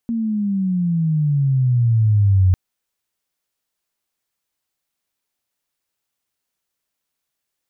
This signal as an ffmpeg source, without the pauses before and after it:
-f lavfi -i "aevalsrc='pow(10,(-10+8.5*(t/2.45-1))/20)*sin(2*PI*234*2.45/(-16.5*log(2)/12)*(exp(-16.5*log(2)/12*t/2.45)-1))':d=2.45:s=44100"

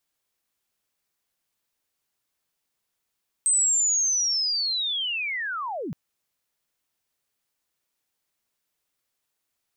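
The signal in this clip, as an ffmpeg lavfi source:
-f lavfi -i "aevalsrc='pow(10,(-17.5-11.5*t/2.47)/20)*sin(2*PI*(8300*t-8180*t*t/(2*2.47)))':d=2.47:s=44100"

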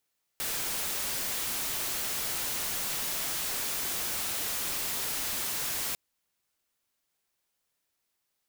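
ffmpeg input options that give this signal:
-f lavfi -i "anoisesrc=c=white:a=0.0411:d=5.55:r=44100:seed=1"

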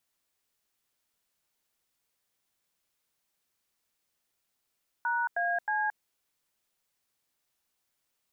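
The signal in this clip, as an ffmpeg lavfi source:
-f lavfi -i "aevalsrc='0.0355*clip(min(mod(t,0.314),0.223-mod(t,0.314))/0.002,0,1)*(eq(floor(t/0.314),0)*(sin(2*PI*941*mod(t,0.314))+sin(2*PI*1477*mod(t,0.314)))+eq(floor(t/0.314),1)*(sin(2*PI*697*mod(t,0.314))+sin(2*PI*1633*mod(t,0.314)))+eq(floor(t/0.314),2)*(sin(2*PI*852*mod(t,0.314))+sin(2*PI*1633*mod(t,0.314))))':d=0.942:s=44100"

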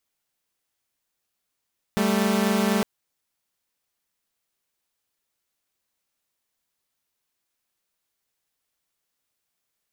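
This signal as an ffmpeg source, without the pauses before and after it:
-f lavfi -i "aevalsrc='0.1*((2*mod(196*t,1)-1)+(2*mod(220*t,1)-1))':d=0.86:s=44100"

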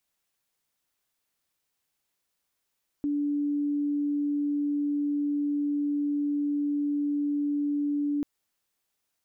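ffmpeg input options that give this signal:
-f lavfi -i "aevalsrc='0.0596*sin(2*PI*290*t)':d=5.19:s=44100"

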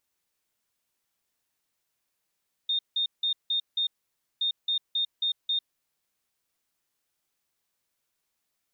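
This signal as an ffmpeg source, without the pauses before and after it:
-f lavfi -i "aevalsrc='0.0668*sin(2*PI*3660*t)*clip(min(mod(mod(t,1.72),0.27),0.1-mod(mod(t,1.72),0.27))/0.005,0,1)*lt(mod(t,1.72),1.35)':d=3.44:s=44100"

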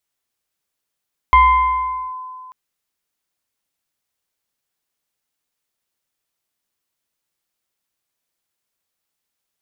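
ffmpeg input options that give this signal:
-f lavfi -i "aevalsrc='0.531*pow(10,-3*t/2.31)*sin(2*PI*1020*t+0.61*clip(1-t/0.82,0,1)*sin(2*PI*1.06*1020*t))':d=1.19:s=44100"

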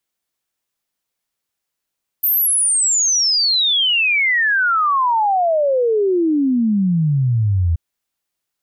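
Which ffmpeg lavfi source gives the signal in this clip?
-f lavfi -i "aevalsrc='0.224*clip(min(t,5.53-t)/0.01,0,1)*sin(2*PI*14000*5.53/log(80/14000)*(exp(log(80/14000)*t/5.53)-1))':d=5.53:s=44100"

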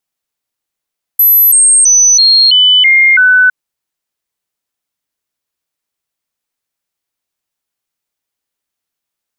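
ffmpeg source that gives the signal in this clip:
-f lavfi -i "aevalsrc='0.668*clip(min(mod(t,0.33),0.33-mod(t,0.33))/0.005,0,1)*sin(2*PI*12000*pow(2,-floor(t/0.33)/2)*mod(t,0.33))':d=2.31:s=44100"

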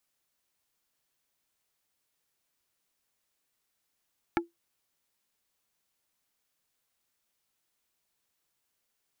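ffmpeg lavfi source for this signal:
-f lavfi -i "aevalsrc='0.0891*pow(10,-3*t/0.16)*sin(2*PI*340*t)+0.0794*pow(10,-3*t/0.053)*sin(2*PI*850*t)+0.0708*pow(10,-3*t/0.03)*sin(2*PI*1360*t)+0.0631*pow(10,-3*t/0.023)*sin(2*PI*1700*t)+0.0562*pow(10,-3*t/0.017)*sin(2*PI*2210*t)':d=0.45:s=44100"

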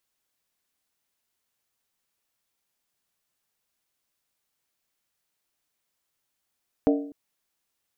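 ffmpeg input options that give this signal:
-f lavfi -i "aevalsrc='0.158*pow(10,-3*t/0.58)*sin(2*PI*286*t)+0.1*pow(10,-3*t/0.459)*sin(2*PI*455.9*t)+0.0631*pow(10,-3*t/0.397)*sin(2*PI*610.9*t)+0.0398*pow(10,-3*t/0.383)*sin(2*PI*656.7*t)+0.0251*pow(10,-3*t/0.356)*sin(2*PI*758.8*t)':d=0.25:s=44100"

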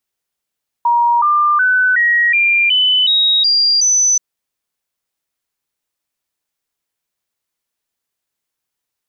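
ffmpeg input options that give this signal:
-f lavfi -i "aevalsrc='0.335*clip(min(mod(t,0.37),0.37-mod(t,0.37))/0.005,0,1)*sin(2*PI*948*pow(2,floor(t/0.37)/3)*mod(t,0.37))':d=3.33:s=44100"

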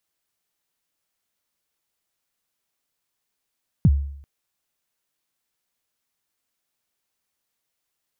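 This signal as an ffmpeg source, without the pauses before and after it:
-f lavfi -i "aevalsrc='0.355*pow(10,-3*t/0.67)*sin(2*PI*(200*0.044/log(70/200)*(exp(log(70/200)*min(t,0.044)/0.044)-1)+70*max(t-0.044,0)))':d=0.39:s=44100"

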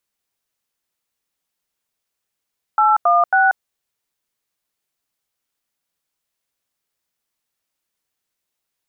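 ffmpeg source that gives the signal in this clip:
-f lavfi -i "aevalsrc='0.211*clip(min(mod(t,0.273),0.186-mod(t,0.273))/0.002,0,1)*(eq(floor(t/0.273),0)*(sin(2*PI*852*mod(t,0.273))+sin(2*PI*1336*mod(t,0.273)))+eq(floor(t/0.273),1)*(sin(2*PI*697*mod(t,0.273))+sin(2*PI*1209*mod(t,0.273)))+eq(floor(t/0.273),2)*(sin(2*PI*770*mod(t,0.273))+sin(2*PI*1477*mod(t,0.273))))':d=0.819:s=44100"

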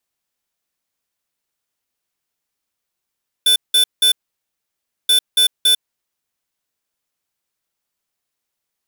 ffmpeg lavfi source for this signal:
-f lavfi -i "aevalsrc='0.237*(2*lt(mod(3510*t,1),0.5)-1)*clip(min(mod(mod(t,1.63),0.28),0.1-mod(mod(t,1.63),0.28))/0.005,0,1)*lt(mod(t,1.63),0.84)':d=3.26:s=44100"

